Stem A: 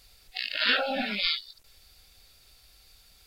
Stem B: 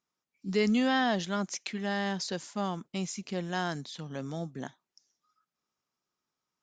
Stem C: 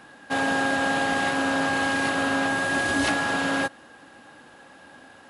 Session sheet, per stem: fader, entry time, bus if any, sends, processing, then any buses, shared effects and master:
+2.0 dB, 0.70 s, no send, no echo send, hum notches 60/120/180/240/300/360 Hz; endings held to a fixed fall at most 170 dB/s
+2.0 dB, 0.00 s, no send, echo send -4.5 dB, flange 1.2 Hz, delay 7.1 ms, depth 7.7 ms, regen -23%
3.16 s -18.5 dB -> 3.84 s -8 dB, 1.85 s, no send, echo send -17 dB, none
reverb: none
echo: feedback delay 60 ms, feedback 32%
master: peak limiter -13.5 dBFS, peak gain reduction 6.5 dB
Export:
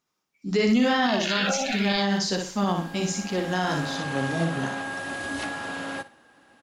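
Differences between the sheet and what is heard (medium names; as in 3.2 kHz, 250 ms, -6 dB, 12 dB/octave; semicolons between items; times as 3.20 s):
stem B +2.0 dB -> +10.5 dB; stem C: entry 1.85 s -> 2.35 s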